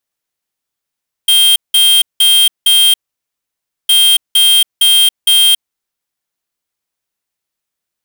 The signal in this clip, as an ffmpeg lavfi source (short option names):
-f lavfi -i "aevalsrc='0.398*(2*lt(mod(3190*t,1),0.5)-1)*clip(min(mod(mod(t,2.61),0.46),0.28-mod(mod(t,2.61),0.46))/0.005,0,1)*lt(mod(t,2.61),1.84)':d=5.22:s=44100"